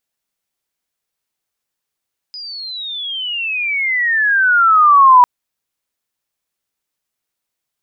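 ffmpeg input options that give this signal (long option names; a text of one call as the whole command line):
ffmpeg -f lavfi -i "aevalsrc='pow(10,(-27+24*t/2.9)/20)*sin(2*PI*5000*2.9/log(970/5000)*(exp(log(970/5000)*t/2.9)-1))':duration=2.9:sample_rate=44100" out.wav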